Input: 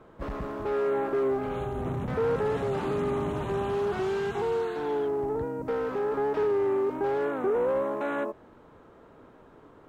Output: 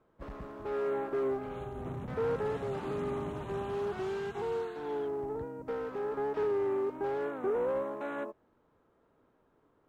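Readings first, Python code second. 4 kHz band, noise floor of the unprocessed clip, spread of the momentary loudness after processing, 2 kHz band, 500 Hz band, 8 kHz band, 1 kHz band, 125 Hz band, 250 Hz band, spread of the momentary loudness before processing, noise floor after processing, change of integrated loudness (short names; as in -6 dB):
-7.0 dB, -54 dBFS, 9 LU, -6.5 dB, -6.0 dB, n/a, -6.5 dB, -7.0 dB, -6.5 dB, 6 LU, -71 dBFS, -6.0 dB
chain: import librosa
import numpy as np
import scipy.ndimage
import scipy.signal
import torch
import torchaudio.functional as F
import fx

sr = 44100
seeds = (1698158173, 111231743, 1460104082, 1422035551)

y = fx.upward_expand(x, sr, threshold_db=-48.0, expansion=1.5)
y = F.gain(torch.from_numpy(y), -4.5).numpy()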